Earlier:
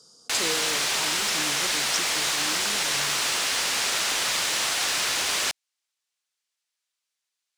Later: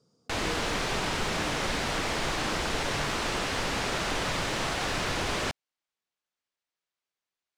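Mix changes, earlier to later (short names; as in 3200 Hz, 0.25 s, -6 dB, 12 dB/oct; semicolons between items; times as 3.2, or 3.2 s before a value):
speech -11.5 dB; master: add tilt -4.5 dB/oct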